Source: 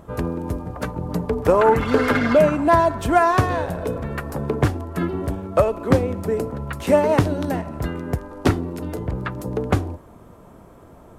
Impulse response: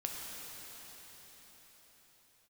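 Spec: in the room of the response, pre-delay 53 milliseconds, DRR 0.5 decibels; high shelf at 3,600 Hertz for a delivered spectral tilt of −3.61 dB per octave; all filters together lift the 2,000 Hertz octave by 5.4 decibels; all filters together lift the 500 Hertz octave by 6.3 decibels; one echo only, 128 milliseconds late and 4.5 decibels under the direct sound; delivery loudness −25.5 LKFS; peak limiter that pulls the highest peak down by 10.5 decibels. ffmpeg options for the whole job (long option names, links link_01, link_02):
-filter_complex "[0:a]equalizer=frequency=500:width_type=o:gain=7.5,equalizer=frequency=2000:width_type=o:gain=7.5,highshelf=frequency=3600:gain=-4.5,alimiter=limit=-9dB:level=0:latency=1,aecho=1:1:128:0.596,asplit=2[link_01][link_02];[1:a]atrim=start_sample=2205,adelay=53[link_03];[link_02][link_03]afir=irnorm=-1:irlink=0,volume=-2.5dB[link_04];[link_01][link_04]amix=inputs=2:normalize=0,volume=-8.5dB"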